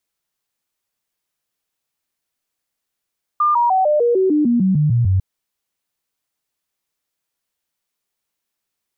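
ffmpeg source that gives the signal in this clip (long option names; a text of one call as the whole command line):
ffmpeg -f lavfi -i "aevalsrc='0.251*clip(min(mod(t,0.15),0.15-mod(t,0.15))/0.005,0,1)*sin(2*PI*1200*pow(2,-floor(t/0.15)/3)*mod(t,0.15))':duration=1.8:sample_rate=44100" out.wav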